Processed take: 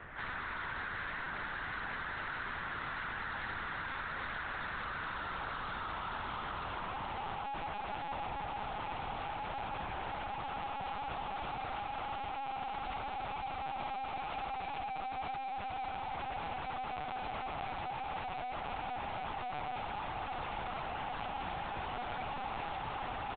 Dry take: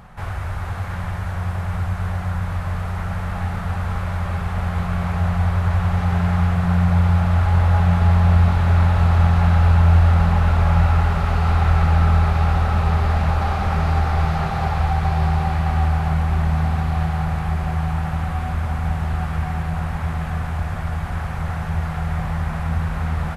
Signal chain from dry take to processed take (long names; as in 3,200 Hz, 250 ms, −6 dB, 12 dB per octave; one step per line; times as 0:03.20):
low-pass filter 2,400 Hz 24 dB per octave
in parallel at −1 dB: brickwall limiter −12 dBFS, peak gain reduction 7.5 dB
on the sum: speech leveller within 4 dB 2 s
mains-hum notches 50/100/150/200 Hz
dead-zone distortion −37.5 dBFS
band-pass filter sweep 1,700 Hz → 840 Hz, 0:04.65–0:07.68
tube saturation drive 41 dB, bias 0.3
steady tone 460 Hz −57 dBFS
on a send: single-tap delay 116 ms −12 dB
on the sum: linear-prediction vocoder at 8 kHz pitch kept
level +2 dB